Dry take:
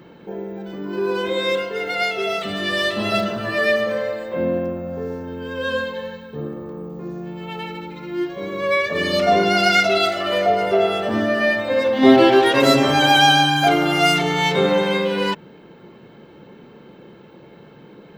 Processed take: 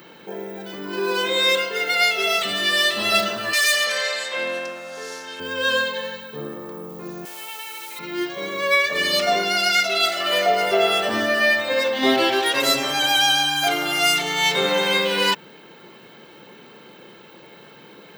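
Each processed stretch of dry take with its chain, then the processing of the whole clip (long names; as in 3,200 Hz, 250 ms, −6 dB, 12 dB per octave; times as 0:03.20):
0:03.53–0:05.40: meter weighting curve ITU-R 468 + gain into a clipping stage and back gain 18 dB
0:07.25–0:07.99: high-pass filter 620 Hz + downward compressor 5 to 1, threshold −37 dBFS + bit-depth reduction 8 bits, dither none
whole clip: spectral tilt +3.5 dB per octave; speech leveller within 5 dB 0.5 s; level −2.5 dB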